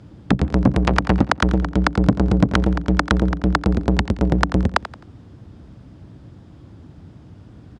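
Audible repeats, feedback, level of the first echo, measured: 3, 32%, -14.5 dB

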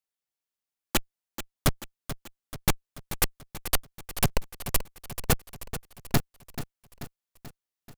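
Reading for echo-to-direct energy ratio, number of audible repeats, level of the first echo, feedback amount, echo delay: -10.5 dB, 5, -12.0 dB, 56%, 0.435 s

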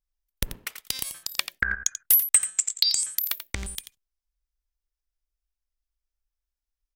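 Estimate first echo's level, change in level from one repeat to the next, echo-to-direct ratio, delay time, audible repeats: -11.0 dB, no steady repeat, -11.0 dB, 87 ms, 1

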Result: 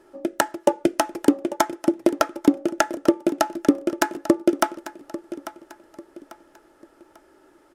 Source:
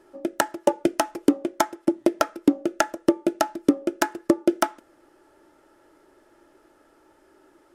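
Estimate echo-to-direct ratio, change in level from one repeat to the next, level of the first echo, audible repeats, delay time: -14.5 dB, -8.5 dB, -15.0 dB, 3, 0.844 s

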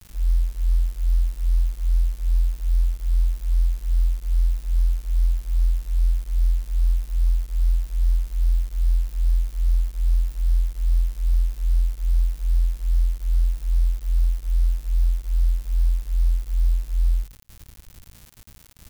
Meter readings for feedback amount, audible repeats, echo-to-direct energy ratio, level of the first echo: no steady repeat, 1, -23.0 dB, -23.0 dB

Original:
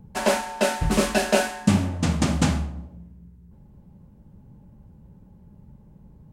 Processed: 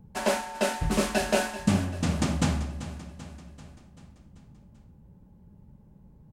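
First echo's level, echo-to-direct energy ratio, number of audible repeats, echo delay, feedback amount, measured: -14.0 dB, -12.5 dB, 5, 0.388 s, 56%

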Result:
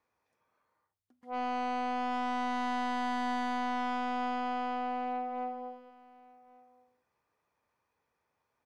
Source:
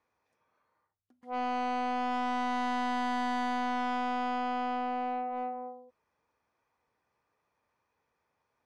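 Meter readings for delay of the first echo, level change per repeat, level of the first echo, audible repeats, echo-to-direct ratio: 1.133 s, no steady repeat, -22.5 dB, 1, -22.5 dB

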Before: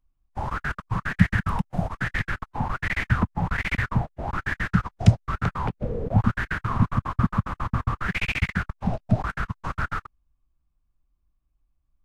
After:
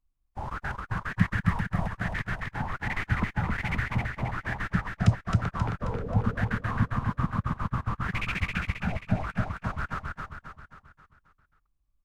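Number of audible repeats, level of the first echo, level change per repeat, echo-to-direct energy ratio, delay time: 6, -3.5 dB, -6.0 dB, -2.5 dB, 0.267 s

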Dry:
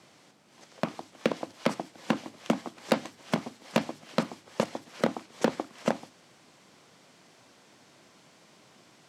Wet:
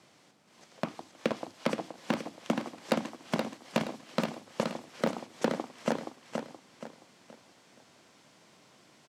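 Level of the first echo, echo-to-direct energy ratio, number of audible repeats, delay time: -5.0 dB, -4.5 dB, 4, 0.474 s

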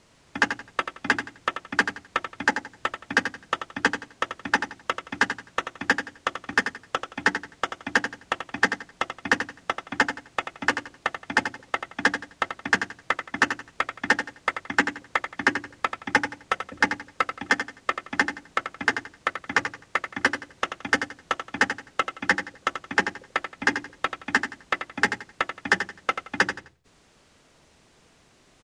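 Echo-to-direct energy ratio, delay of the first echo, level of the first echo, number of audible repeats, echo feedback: -8.5 dB, 86 ms, -9.0 dB, 3, 27%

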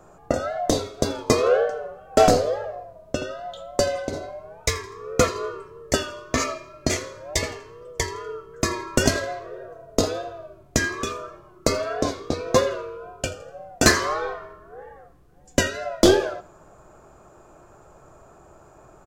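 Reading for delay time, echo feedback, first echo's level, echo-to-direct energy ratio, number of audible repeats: 82 ms, 34%, -19.5 dB, -19.0 dB, 2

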